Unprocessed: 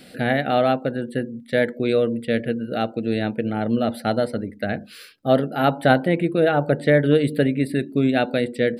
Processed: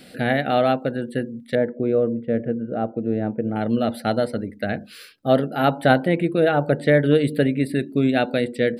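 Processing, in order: 1.55–3.56 LPF 1000 Hz 12 dB/oct

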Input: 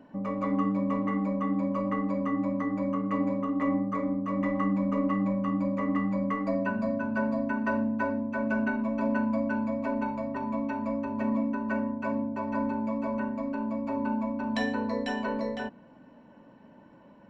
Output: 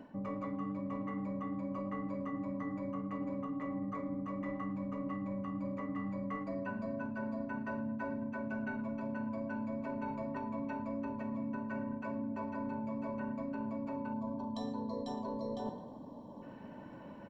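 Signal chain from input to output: in parallel at +1 dB: vocal rider; on the sum: harmoniser -12 st -17 dB, -7 st -17 dB; spectral gain 14.14–16.42, 1200–3100 Hz -20 dB; tape echo 0.107 s, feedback 57%, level -17 dB, low-pass 4400 Hz; reverse; compressor 6:1, threshold -33 dBFS, peak gain reduction 16 dB; reverse; gain -4 dB

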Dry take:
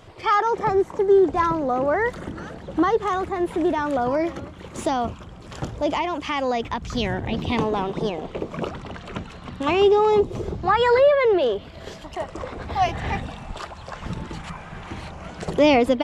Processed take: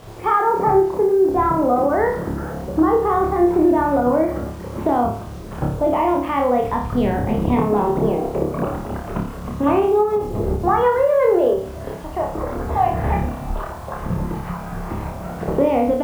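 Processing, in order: LPF 1200 Hz 12 dB/oct; compressor 12:1, threshold -21 dBFS, peak gain reduction 10 dB; bit-crush 9-bit; flutter echo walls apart 4.9 m, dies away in 0.5 s; ending taper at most 110 dB/s; gain +6 dB

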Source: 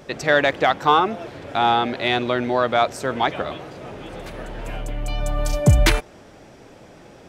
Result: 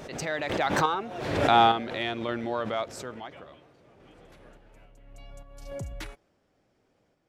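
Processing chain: Doppler pass-by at 1.5, 18 m/s, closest 5.7 m; random-step tremolo 3.5 Hz; backwards sustainer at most 48 dB/s

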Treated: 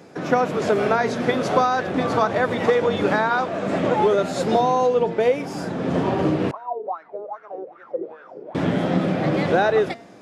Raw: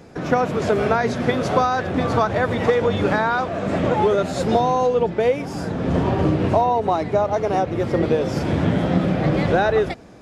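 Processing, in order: HPF 170 Hz 12 dB/oct; de-hum 230.9 Hz, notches 39; 6.51–8.55 wah 2.5 Hz 390–1500 Hz, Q 9.9

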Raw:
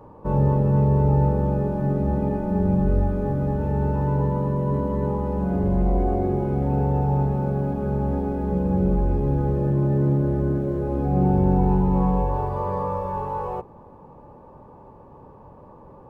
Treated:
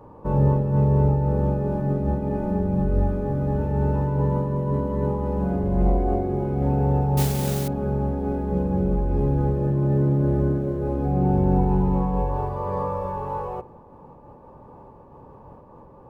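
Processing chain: 7.17–7.68 modulation noise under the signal 11 dB; on a send at -20 dB: reverb RT60 0.90 s, pre-delay 3 ms; on the sum: noise-modulated level, depth 55%; gain +2 dB

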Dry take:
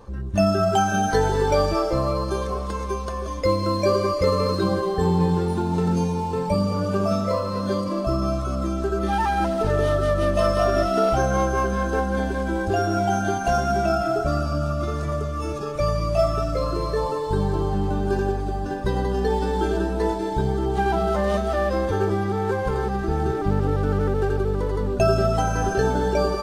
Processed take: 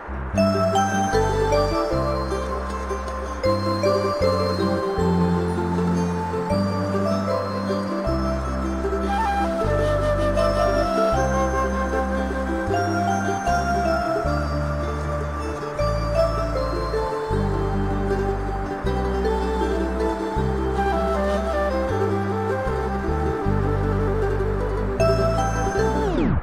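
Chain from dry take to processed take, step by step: tape stop at the end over 0.39 s; band noise 250–1600 Hz -36 dBFS

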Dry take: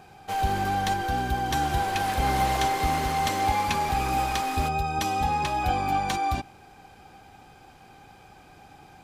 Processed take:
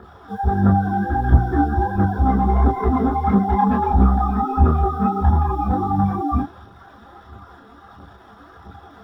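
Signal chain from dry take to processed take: LPF 1500 Hz 12 dB/oct; notch 610 Hz, Q 12; spectral gate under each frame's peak -20 dB strong; bell 740 Hz -14 dB 1.5 oct; 2.41–5.19 comb 4.7 ms, depth 88%; dynamic EQ 200 Hz, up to +6 dB, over -46 dBFS, Q 0.72; bit-crush 9-bit; phaser 1.5 Hz, delay 4.7 ms, feedback 70%; one-sided clip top -24 dBFS; reverb, pre-delay 3 ms, DRR -3.5 dB; gain -6.5 dB

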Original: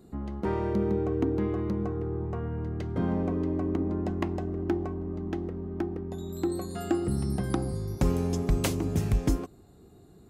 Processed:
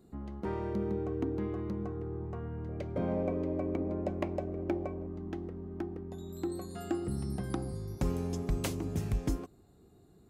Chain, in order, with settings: 2.69–5.07 small resonant body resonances 570/2300 Hz, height 16 dB, ringing for 35 ms; gain -6.5 dB

